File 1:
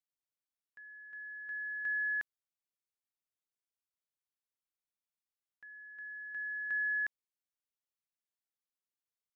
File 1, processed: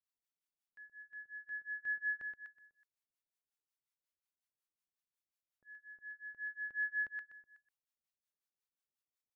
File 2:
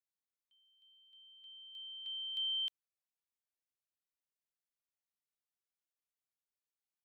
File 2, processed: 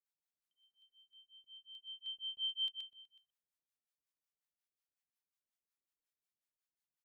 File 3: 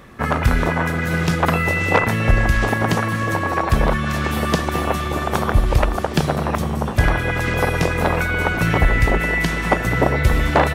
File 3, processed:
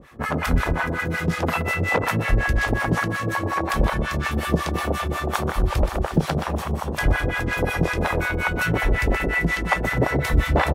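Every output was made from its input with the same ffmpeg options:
-filter_complex "[0:a]aecho=1:1:124|248|372|496|620:0.447|0.192|0.0826|0.0355|0.0153,acrossover=split=680[link_01][link_02];[link_01]aeval=exprs='val(0)*(1-1/2+1/2*cos(2*PI*5.5*n/s))':channel_layout=same[link_03];[link_02]aeval=exprs='val(0)*(1-1/2-1/2*cos(2*PI*5.5*n/s))':channel_layout=same[link_04];[link_03][link_04]amix=inputs=2:normalize=0"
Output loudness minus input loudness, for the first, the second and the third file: −4.5, −2.5, −4.0 LU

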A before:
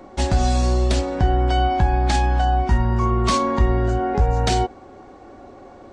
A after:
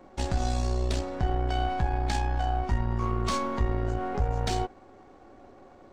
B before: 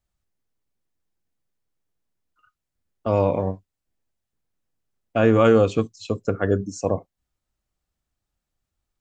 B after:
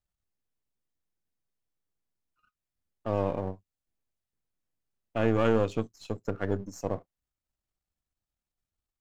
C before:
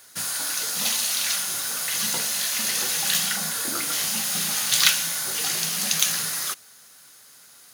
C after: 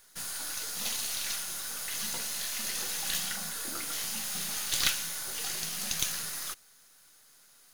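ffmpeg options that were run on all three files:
-af "aeval=exprs='if(lt(val(0),0),0.447*val(0),val(0))':channel_layout=same,volume=-7dB"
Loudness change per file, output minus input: −9.5, −9.0, −9.5 LU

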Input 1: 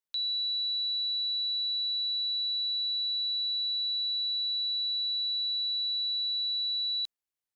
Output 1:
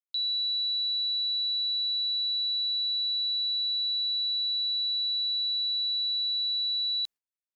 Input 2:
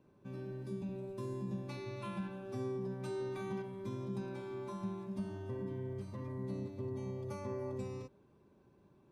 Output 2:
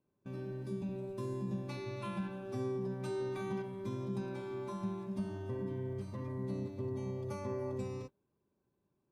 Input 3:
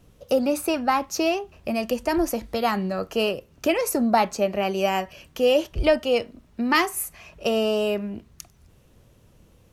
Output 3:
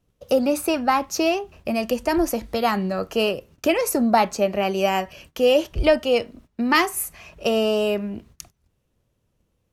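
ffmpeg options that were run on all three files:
-af "agate=range=-17dB:threshold=-49dB:ratio=16:detection=peak,volume=2dB"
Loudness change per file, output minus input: +2.0, +2.0, +2.0 LU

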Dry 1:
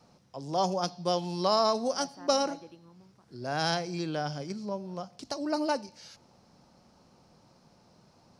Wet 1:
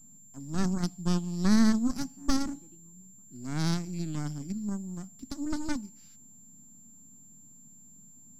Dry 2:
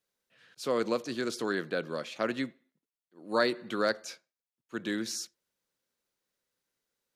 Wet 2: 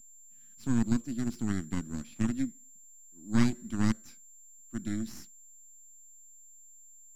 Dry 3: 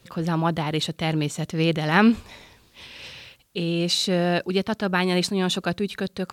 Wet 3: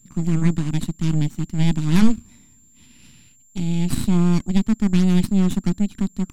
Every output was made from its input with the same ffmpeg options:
-af "aeval=exprs='val(0)+0.0126*sin(2*PI*7300*n/s)':channel_layout=same,aeval=exprs='0.562*(cos(1*acos(clip(val(0)/0.562,-1,1)))-cos(1*PI/2))+0.282*(cos(3*acos(clip(val(0)/0.562,-1,1)))-cos(3*PI/2))+0.2*(cos(6*acos(clip(val(0)/0.562,-1,1)))-cos(6*PI/2))':channel_layout=same,lowshelf=frequency=350:width_type=q:width=3:gain=12,volume=-9dB"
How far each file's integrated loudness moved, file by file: 0.0, 0.0, +2.5 LU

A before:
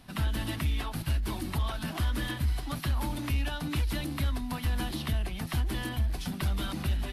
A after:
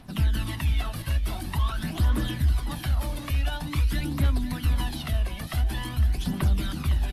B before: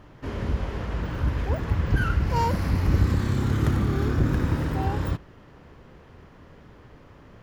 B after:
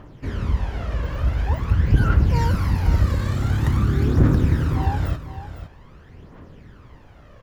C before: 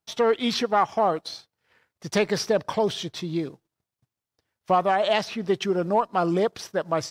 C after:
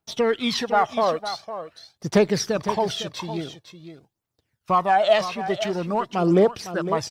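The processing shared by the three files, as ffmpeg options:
-af "aphaser=in_gain=1:out_gain=1:delay=1.9:decay=0.55:speed=0.47:type=triangular,aecho=1:1:507:0.266"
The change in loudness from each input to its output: +4.5, +4.5, +2.0 LU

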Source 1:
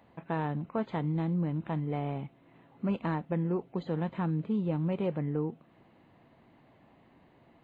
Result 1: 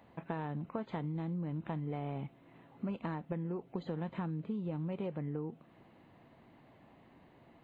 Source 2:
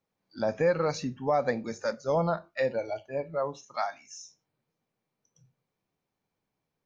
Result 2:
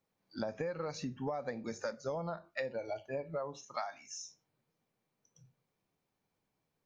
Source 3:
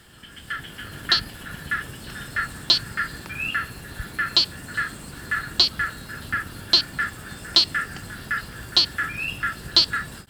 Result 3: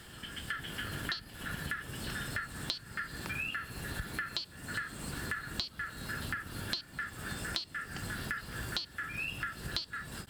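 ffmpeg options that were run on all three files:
-af "acompressor=threshold=-34dB:ratio=16"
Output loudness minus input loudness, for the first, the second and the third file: −7.0, −10.0, −15.0 LU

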